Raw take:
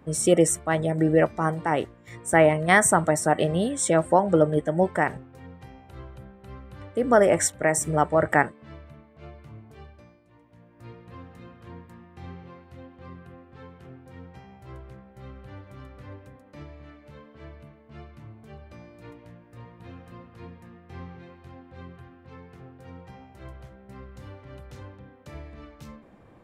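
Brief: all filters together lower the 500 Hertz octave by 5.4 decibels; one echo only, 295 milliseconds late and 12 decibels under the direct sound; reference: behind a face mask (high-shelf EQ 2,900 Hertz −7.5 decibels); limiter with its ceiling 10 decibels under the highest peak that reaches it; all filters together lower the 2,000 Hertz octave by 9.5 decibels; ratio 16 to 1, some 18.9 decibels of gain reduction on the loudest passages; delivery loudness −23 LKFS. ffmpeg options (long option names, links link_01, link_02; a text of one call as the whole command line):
ffmpeg -i in.wav -af "equalizer=frequency=500:width_type=o:gain=-6,equalizer=frequency=2000:width_type=o:gain=-8.5,acompressor=threshold=-36dB:ratio=16,alimiter=level_in=11dB:limit=-24dB:level=0:latency=1,volume=-11dB,highshelf=frequency=2900:gain=-7.5,aecho=1:1:295:0.251,volume=24dB" out.wav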